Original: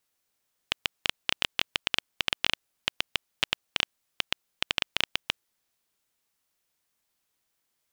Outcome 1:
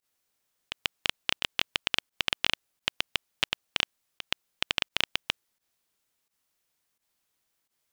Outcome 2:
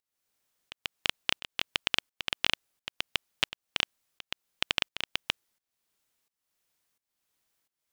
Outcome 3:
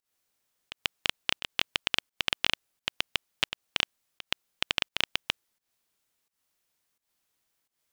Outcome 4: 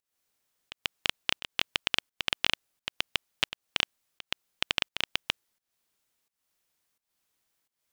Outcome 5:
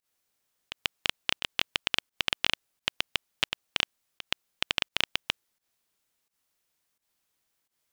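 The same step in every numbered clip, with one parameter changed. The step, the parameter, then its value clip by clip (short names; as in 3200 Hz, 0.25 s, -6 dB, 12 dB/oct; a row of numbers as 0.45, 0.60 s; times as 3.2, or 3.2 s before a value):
pump, release: 76, 510, 184, 306, 113 ms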